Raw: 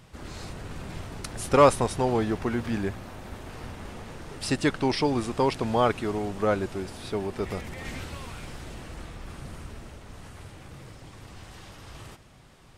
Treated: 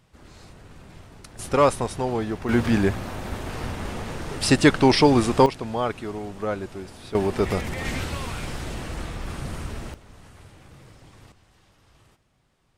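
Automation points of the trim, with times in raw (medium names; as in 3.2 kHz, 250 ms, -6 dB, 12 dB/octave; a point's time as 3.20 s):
-8 dB
from 1.39 s -1 dB
from 2.49 s +8.5 dB
from 5.46 s -3 dB
from 7.15 s +8 dB
from 9.94 s -3.5 dB
from 11.32 s -13.5 dB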